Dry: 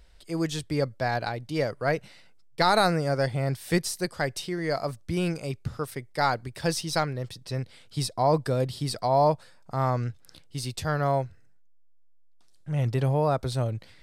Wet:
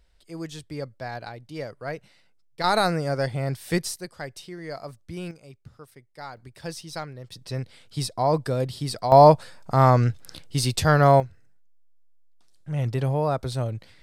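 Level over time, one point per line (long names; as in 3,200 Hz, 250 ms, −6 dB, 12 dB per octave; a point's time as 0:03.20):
−7 dB
from 0:02.64 0 dB
from 0:03.96 −7.5 dB
from 0:05.31 −14.5 dB
from 0:06.37 −8 dB
from 0:07.32 +0.5 dB
from 0:09.12 +9 dB
from 0:11.20 0 dB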